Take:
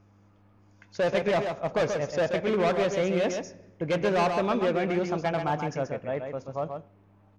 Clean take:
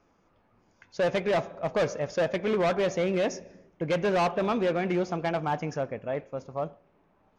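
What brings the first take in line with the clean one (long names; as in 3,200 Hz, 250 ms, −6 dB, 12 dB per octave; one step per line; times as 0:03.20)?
hum removal 100.7 Hz, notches 3
echo removal 132 ms −6 dB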